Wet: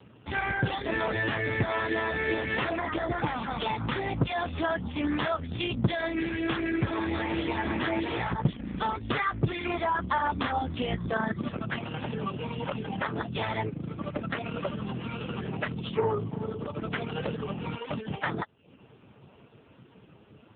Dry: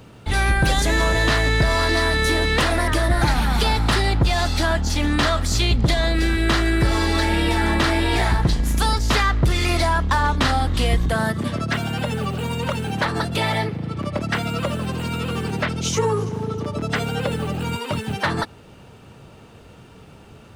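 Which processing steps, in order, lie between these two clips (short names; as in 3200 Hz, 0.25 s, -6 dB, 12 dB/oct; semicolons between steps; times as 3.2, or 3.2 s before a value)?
reverb removal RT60 0.53 s; gain -4 dB; AMR-NB 5.15 kbps 8000 Hz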